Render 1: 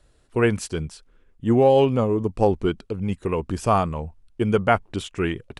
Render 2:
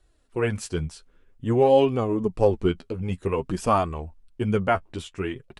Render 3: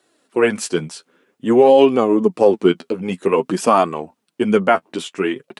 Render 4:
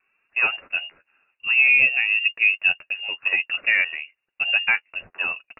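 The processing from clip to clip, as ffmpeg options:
ffmpeg -i in.wav -af "dynaudnorm=framelen=100:gausssize=13:maxgain=8dB,flanger=delay=2.6:depth=9.8:regen=24:speed=0.51:shape=sinusoidal,volume=-2.5dB" out.wav
ffmpeg -i in.wav -af "highpass=frequency=200:width=0.5412,highpass=frequency=200:width=1.3066,alimiter=level_in=11dB:limit=-1dB:release=50:level=0:latency=1,volume=-1dB" out.wav
ffmpeg -i in.wav -af "lowpass=frequency=2600:width_type=q:width=0.5098,lowpass=frequency=2600:width_type=q:width=0.6013,lowpass=frequency=2600:width_type=q:width=0.9,lowpass=frequency=2600:width_type=q:width=2.563,afreqshift=-3000,volume=-6dB" out.wav

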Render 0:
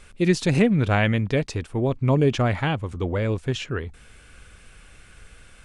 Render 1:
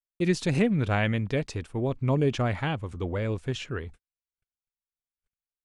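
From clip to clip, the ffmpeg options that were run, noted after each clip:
ffmpeg -i in.wav -af "agate=range=-56dB:threshold=-38dB:ratio=16:detection=peak,volume=-5dB" out.wav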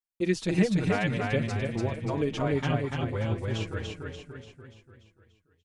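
ffmpeg -i in.wav -filter_complex "[0:a]asplit=2[link_01][link_02];[link_02]aecho=0:1:291|582|873|1164|1455|1746|2037:0.708|0.361|0.184|0.0939|0.0479|0.0244|0.0125[link_03];[link_01][link_03]amix=inputs=2:normalize=0,asplit=2[link_04][link_05];[link_05]adelay=5.4,afreqshift=-0.63[link_06];[link_04][link_06]amix=inputs=2:normalize=1" out.wav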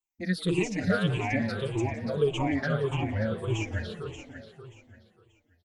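ffmpeg -i in.wav -filter_complex "[0:a]afftfilt=real='re*pow(10,23/40*sin(2*PI*(0.68*log(max(b,1)*sr/1024/100)/log(2)-(-1.7)*(pts-256)/sr)))':imag='im*pow(10,23/40*sin(2*PI*(0.68*log(max(b,1)*sr/1024/100)/log(2)-(-1.7)*(pts-256)/sr)))':win_size=1024:overlap=0.75,asplit=5[link_01][link_02][link_03][link_04][link_05];[link_02]adelay=176,afreqshift=120,volume=-18dB[link_06];[link_03]adelay=352,afreqshift=240,volume=-24.2dB[link_07];[link_04]adelay=528,afreqshift=360,volume=-30.4dB[link_08];[link_05]adelay=704,afreqshift=480,volume=-36.6dB[link_09];[link_01][link_06][link_07][link_08][link_09]amix=inputs=5:normalize=0,volume=-5dB" out.wav

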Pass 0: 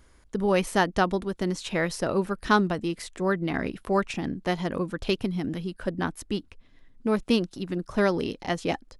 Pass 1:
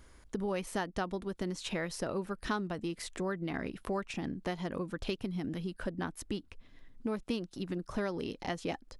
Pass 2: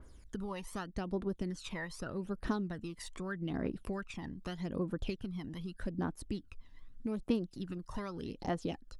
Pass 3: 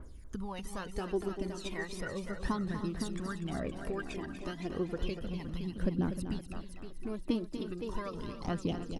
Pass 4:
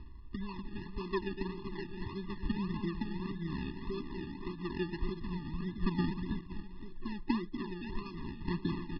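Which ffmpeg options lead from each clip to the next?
ffmpeg -i in.wav -af "acompressor=threshold=-35dB:ratio=3" out.wav
ffmpeg -i in.wav -af "equalizer=frequency=2200:width_type=o:width=0.44:gain=-3.5,aphaser=in_gain=1:out_gain=1:delay=1.1:decay=0.65:speed=0.82:type=triangular,adynamicequalizer=threshold=0.00316:dfrequency=2800:dqfactor=0.7:tfrequency=2800:tqfactor=0.7:attack=5:release=100:ratio=0.375:range=2.5:mode=cutabove:tftype=highshelf,volume=-5.5dB" out.wav
ffmpeg -i in.wav -filter_complex "[0:a]asplit=2[link_01][link_02];[link_02]aecho=0:1:516|1032|1548|2064:0.355|0.114|0.0363|0.0116[link_03];[link_01][link_03]amix=inputs=2:normalize=0,aphaser=in_gain=1:out_gain=1:delay=3.4:decay=0.52:speed=0.34:type=triangular,asplit=2[link_04][link_05];[link_05]aecho=0:1:243|307:0.335|0.211[link_06];[link_04][link_06]amix=inputs=2:normalize=0" out.wav
ffmpeg -i in.wav -af "acrusher=samples=33:mix=1:aa=0.000001:lfo=1:lforange=19.8:lforate=1.7,aresample=11025,aresample=44100,afftfilt=real='re*eq(mod(floor(b*sr/1024/410),2),0)':imag='im*eq(mod(floor(b*sr/1024/410),2),0)':win_size=1024:overlap=0.75" out.wav

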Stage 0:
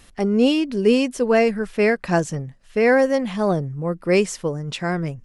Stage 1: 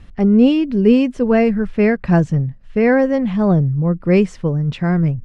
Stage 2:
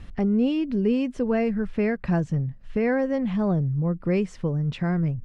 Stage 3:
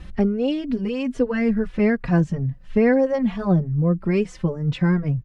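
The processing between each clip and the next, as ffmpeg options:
ffmpeg -i in.wav -af "lowpass=7700,bass=frequency=250:gain=13,treble=frequency=4000:gain=-12" out.wav
ffmpeg -i in.wav -af "acompressor=threshold=-28dB:ratio=2" out.wav
ffmpeg -i in.wav -filter_complex "[0:a]asplit=2[link_01][link_02];[link_02]adelay=3.5,afreqshift=2.3[link_03];[link_01][link_03]amix=inputs=2:normalize=1,volume=7dB" out.wav

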